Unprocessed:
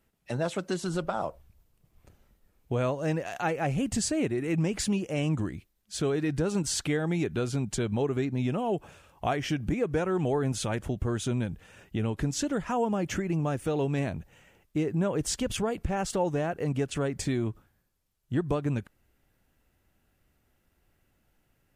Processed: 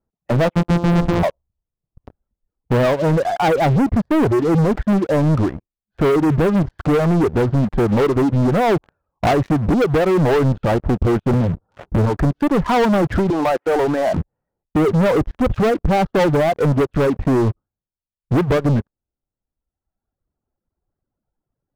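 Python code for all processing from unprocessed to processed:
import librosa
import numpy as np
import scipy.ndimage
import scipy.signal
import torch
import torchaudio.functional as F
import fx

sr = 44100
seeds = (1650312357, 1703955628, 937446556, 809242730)

y = fx.chain(x, sr, fx.sample_sort(block=256),
    fx.lowpass(hz=1500.0, slope=6),
    fx.leveller(passes=2), at=(0.55, 1.23))
y = fx.chain(y, sr, fx.steep_lowpass(hz=1500.0, slope=72),
    fx.peak_eq(hz=100.0, db=5.0, octaves=0.21),
    fx.band_squash(depth_pct=70), at=(11.33, 12.17))
y = fx.chain(y, sr, fx.highpass(hz=570.0, slope=12),
    fx.peak_eq(hz=10000.0, db=7.0, octaves=0.28),
    fx.env_flatten(amount_pct=70), at=(13.3, 14.17))
y = scipy.signal.sosfilt(scipy.signal.butter(4, 1200.0, 'lowpass', fs=sr, output='sos'), y)
y = fx.dereverb_blind(y, sr, rt60_s=1.6)
y = fx.leveller(y, sr, passes=5)
y = F.gain(torch.from_numpy(y), 3.5).numpy()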